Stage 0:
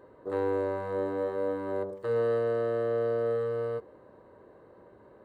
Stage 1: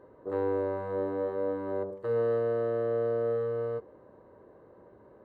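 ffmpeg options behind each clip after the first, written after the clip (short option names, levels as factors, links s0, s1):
-af "highshelf=f=2400:g=-11"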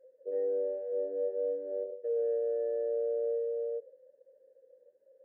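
-filter_complex "[0:a]asoftclip=type=tanh:threshold=0.075,asplit=3[s0][s1][s2];[s0]bandpass=f=530:t=q:w=8,volume=1[s3];[s1]bandpass=f=1840:t=q:w=8,volume=0.501[s4];[s2]bandpass=f=2480:t=q:w=8,volume=0.355[s5];[s3][s4][s5]amix=inputs=3:normalize=0,afftdn=nr=17:nf=-47,volume=1.88"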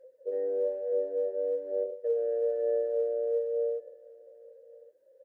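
-af "aphaser=in_gain=1:out_gain=1:delay=3.2:decay=0.29:speed=1.1:type=sinusoidal,equalizer=f=220:t=o:w=1.7:g=-5,aecho=1:1:1114:0.0668,volume=1.58"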